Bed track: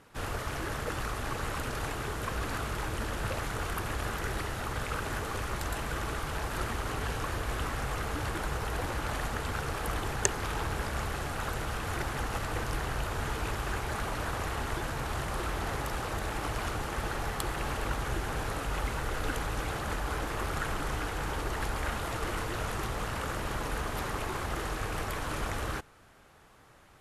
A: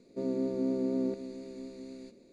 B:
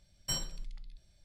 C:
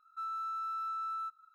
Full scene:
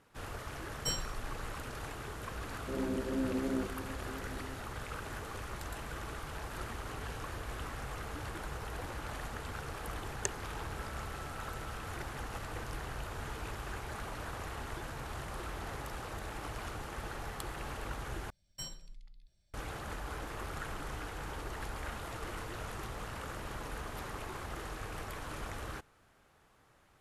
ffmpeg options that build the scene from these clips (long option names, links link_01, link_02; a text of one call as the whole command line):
ffmpeg -i bed.wav -i cue0.wav -i cue1.wav -i cue2.wav -filter_complex "[2:a]asplit=2[link_01][link_02];[0:a]volume=-8dB[link_03];[link_01]dynaudnorm=framelen=110:gausssize=3:maxgain=10dB[link_04];[1:a]flanger=delay=18.5:depth=5.3:speed=2.8[link_05];[3:a]acompressor=threshold=-41dB:ratio=6:attack=3.2:release=140:knee=1:detection=peak[link_06];[link_03]asplit=2[link_07][link_08];[link_07]atrim=end=18.304[link_09];[link_02]atrim=end=1.24,asetpts=PTS-STARTPTS,volume=-9dB[link_10];[link_08]atrim=start=19.536[link_11];[link_04]atrim=end=1.24,asetpts=PTS-STARTPTS,volume=-11dB,afade=type=in:duration=0.004:curve=hsin,afade=type=out:start_time=1.236:duration=0.004:curve=hsin,adelay=570[link_12];[link_05]atrim=end=2.32,asetpts=PTS-STARTPTS,volume=-1.5dB,afade=type=in:duration=0.004:curve=hsin,afade=type=out:start_time=2.316:duration=0.004:curve=hsin,adelay=2510[link_13];[link_06]atrim=end=1.54,asetpts=PTS-STARTPTS,volume=-10.5dB,afade=type=in:duration=0.004:curve=hsin,afade=type=out:start_time=1.536:duration=0.004:curve=hsin,adelay=10600[link_14];[link_09][link_10]acrossfade=duration=0.004:curve1=hsin:curve2=hsin[link_15];[link_15][link_11]acrossfade=duration=0.004:curve1=hsin:curve2=hsin[link_16];[link_16][link_12][link_13][link_14]amix=inputs=4:normalize=0" out.wav